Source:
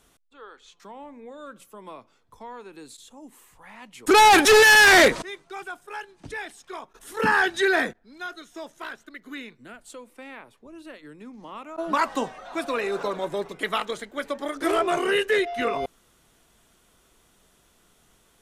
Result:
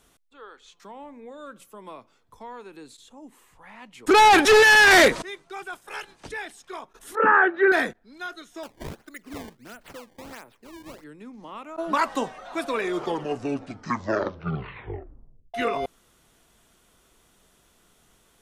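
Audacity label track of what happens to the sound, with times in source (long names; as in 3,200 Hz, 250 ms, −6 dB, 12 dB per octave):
2.770000	4.910000	high-shelf EQ 6,500 Hz −8.5 dB
5.720000	6.280000	ceiling on every frequency bin ceiling under each frame's peak by 17 dB
7.150000	7.720000	loudspeaker in its box 290–2,100 Hz, peaks and dips at 340 Hz +8 dB, 570 Hz +9 dB, 1,300 Hz +9 dB
8.630000	11.040000	sample-and-hold swept by an LFO 19×, swing 160% 1.5 Hz
12.650000	12.650000	tape stop 2.89 s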